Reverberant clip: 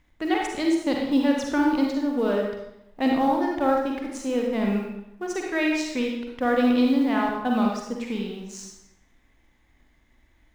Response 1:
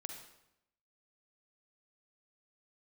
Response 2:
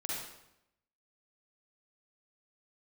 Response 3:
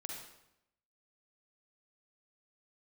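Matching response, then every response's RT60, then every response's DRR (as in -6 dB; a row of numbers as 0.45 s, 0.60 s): 3; 0.80 s, 0.85 s, 0.80 s; 3.5 dB, -5.0 dB, -0.5 dB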